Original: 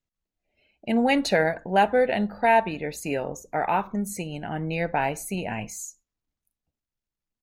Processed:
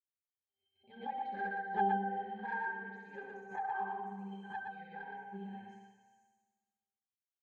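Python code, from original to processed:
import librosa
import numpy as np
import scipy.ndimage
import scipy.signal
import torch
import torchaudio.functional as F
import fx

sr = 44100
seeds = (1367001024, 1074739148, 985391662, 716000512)

y = fx.tilt_eq(x, sr, slope=4.0)
y = fx.room_flutter(y, sr, wall_m=11.3, rt60_s=1.5)
y = fx.env_lowpass_down(y, sr, base_hz=2200.0, full_db=-17.5)
y = fx.peak_eq(y, sr, hz=1100.0, db=14.0, octaves=0.93, at=(2.36, 4.69))
y = fx.octave_resonator(y, sr, note='G', decay_s=0.43)
y = fx.env_flanger(y, sr, rest_ms=8.0, full_db=-24.5)
y = y + 10.0 ** (-3.5 / 20.0) * np.pad(y, (int(118 * sr / 1000.0), 0))[:len(y)]
y = fx.pre_swell(y, sr, db_per_s=150.0)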